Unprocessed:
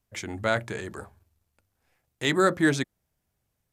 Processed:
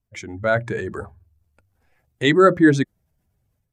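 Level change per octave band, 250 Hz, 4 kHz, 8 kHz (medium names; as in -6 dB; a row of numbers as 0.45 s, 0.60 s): +9.0 dB, +3.0 dB, -2.0 dB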